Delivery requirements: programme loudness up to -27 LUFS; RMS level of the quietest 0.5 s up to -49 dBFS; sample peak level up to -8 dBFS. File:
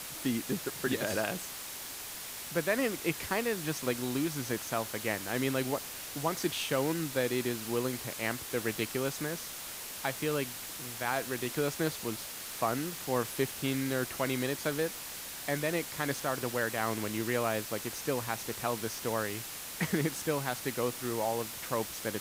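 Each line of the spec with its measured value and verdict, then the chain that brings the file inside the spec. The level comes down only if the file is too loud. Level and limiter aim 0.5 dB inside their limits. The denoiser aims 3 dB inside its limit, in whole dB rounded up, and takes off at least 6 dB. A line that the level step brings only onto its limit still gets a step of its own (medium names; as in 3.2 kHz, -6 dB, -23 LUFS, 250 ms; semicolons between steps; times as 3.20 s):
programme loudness -33.5 LUFS: pass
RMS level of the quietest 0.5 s -42 dBFS: fail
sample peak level -16.0 dBFS: pass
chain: noise reduction 10 dB, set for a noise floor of -42 dBFS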